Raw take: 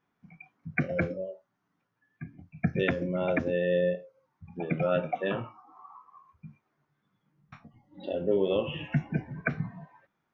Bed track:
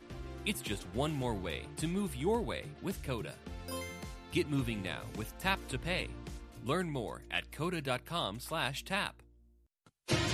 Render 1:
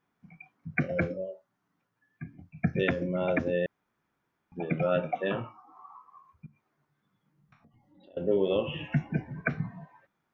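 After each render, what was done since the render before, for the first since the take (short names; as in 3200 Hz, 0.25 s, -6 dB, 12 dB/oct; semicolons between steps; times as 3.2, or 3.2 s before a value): 3.66–4.52 room tone; 6.46–8.17 compressor 3:1, threshold -60 dBFS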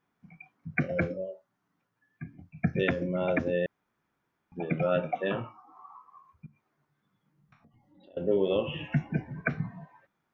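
nothing audible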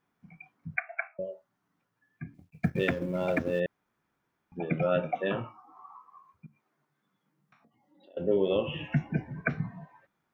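0.76–1.19 brick-wall FIR band-pass 640–2700 Hz; 2.34–3.6 G.711 law mismatch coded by A; 5.92–8.18 HPF 110 Hz -> 320 Hz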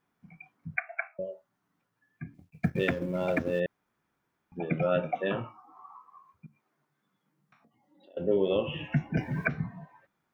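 9.17–9.64 three-band squash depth 100%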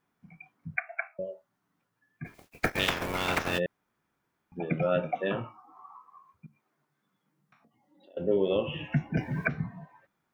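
2.24–3.57 spectral limiter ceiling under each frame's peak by 30 dB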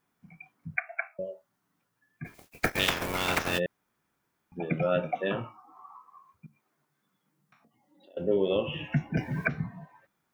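high shelf 4700 Hz +6 dB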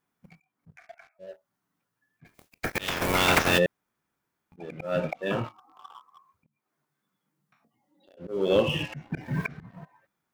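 sample leveller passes 2; auto swell 0.325 s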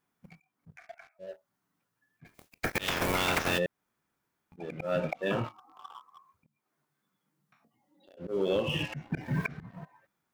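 compressor 6:1, threshold -25 dBFS, peak gain reduction 8.5 dB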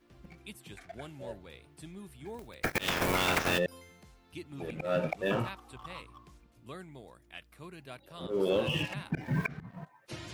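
add bed track -12 dB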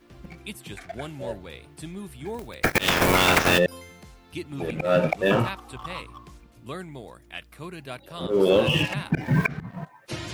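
gain +9.5 dB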